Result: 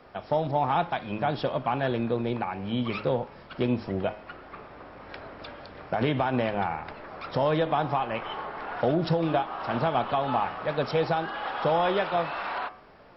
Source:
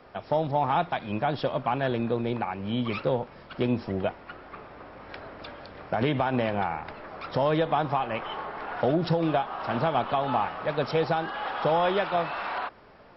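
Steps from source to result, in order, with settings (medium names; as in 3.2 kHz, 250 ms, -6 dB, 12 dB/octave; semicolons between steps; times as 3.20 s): de-hum 105.6 Hz, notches 31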